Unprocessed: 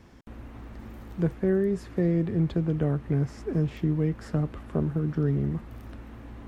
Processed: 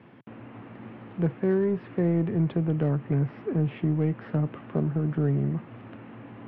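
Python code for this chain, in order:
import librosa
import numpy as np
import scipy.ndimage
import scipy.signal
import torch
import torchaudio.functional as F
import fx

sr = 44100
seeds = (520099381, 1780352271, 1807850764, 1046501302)

p1 = scipy.signal.sosfilt(scipy.signal.ellip(3, 1.0, 40, [120.0, 2900.0], 'bandpass', fs=sr, output='sos'), x)
p2 = 10.0 ** (-30.0 / 20.0) * np.tanh(p1 / 10.0 ** (-30.0 / 20.0))
p3 = p1 + (p2 * 10.0 ** (-4.0 / 20.0))
y = p3 * 10.0 ** (-1.0 / 20.0)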